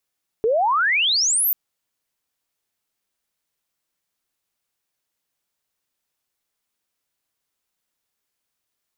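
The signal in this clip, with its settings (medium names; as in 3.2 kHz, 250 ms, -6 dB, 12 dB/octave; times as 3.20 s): sweep logarithmic 420 Hz -> 15 kHz -15.5 dBFS -> -16.5 dBFS 1.09 s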